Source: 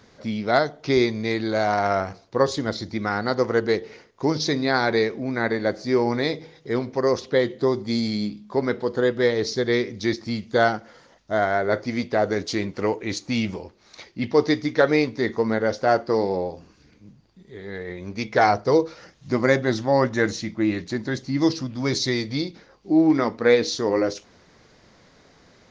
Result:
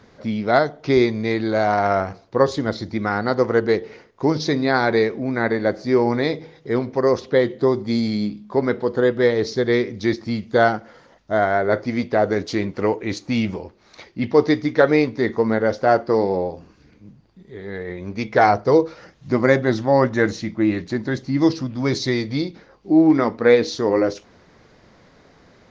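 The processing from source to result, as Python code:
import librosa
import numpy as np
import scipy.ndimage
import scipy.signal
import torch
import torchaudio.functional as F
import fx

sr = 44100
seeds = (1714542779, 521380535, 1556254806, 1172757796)

y = fx.high_shelf(x, sr, hz=3800.0, db=-9.5)
y = y * librosa.db_to_amplitude(3.5)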